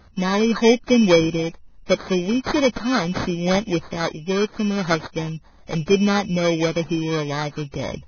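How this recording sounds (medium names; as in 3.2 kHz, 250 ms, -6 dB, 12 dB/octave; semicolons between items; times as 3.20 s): aliases and images of a low sample rate 2.8 kHz, jitter 0%; Vorbis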